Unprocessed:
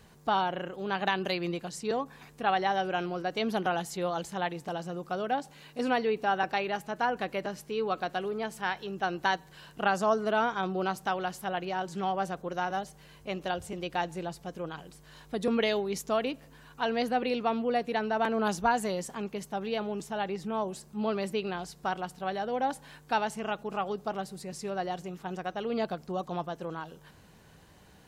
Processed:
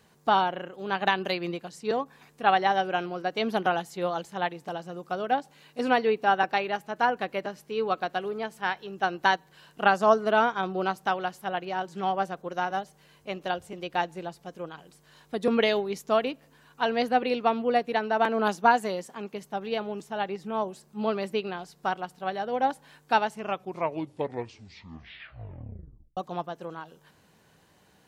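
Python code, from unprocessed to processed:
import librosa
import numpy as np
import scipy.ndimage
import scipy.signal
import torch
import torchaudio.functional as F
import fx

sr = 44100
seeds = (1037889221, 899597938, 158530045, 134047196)

y = fx.highpass(x, sr, hz=160.0, slope=12, at=(17.93, 19.33))
y = fx.edit(y, sr, fx.tape_stop(start_s=23.34, length_s=2.83), tone=tone)
y = fx.highpass(y, sr, hz=160.0, slope=6)
y = fx.dynamic_eq(y, sr, hz=8000.0, q=0.71, threshold_db=-53.0, ratio=4.0, max_db=-4)
y = fx.upward_expand(y, sr, threshold_db=-42.0, expansion=1.5)
y = y * librosa.db_to_amplitude(7.0)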